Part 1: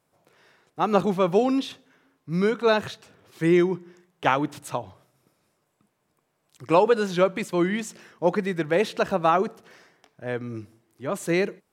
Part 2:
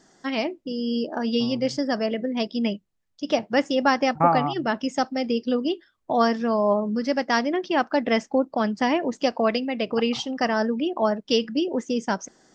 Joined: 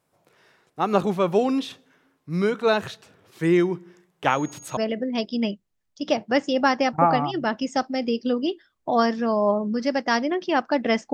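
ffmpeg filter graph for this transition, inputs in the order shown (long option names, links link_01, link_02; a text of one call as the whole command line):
ffmpeg -i cue0.wav -i cue1.wav -filter_complex "[0:a]asettb=1/sr,asplit=3[link_01][link_02][link_03];[link_01]atrim=end=4.304[link_04];[link_02]atrim=start=4.3:end=4.77,asetpts=PTS-STARTPTS,afade=type=in:duration=0.004:curve=qsin,afade=type=out:start_time=0.466:duration=0.004:curve=qsin,aeval=exprs='val(0)+0.00708*sin(2*PI*6600*n/s)':channel_layout=same[link_05];[link_03]atrim=start=4.766[link_06];[link_04][link_05]acrossfade=duration=0.004:curve1=hsin:curve2=qsin[link_07];[link_07][link_06]acrossfade=duration=0.004:curve1=qsin:curve2=hsin,apad=whole_dur=11.13,atrim=end=11.13,atrim=end=4.772[link_08];[1:a]atrim=start=1.988:end=8.35[link_09];[link_08][link_09]acrossfade=duration=0.004:curve1=hsin:curve2=hsin" out.wav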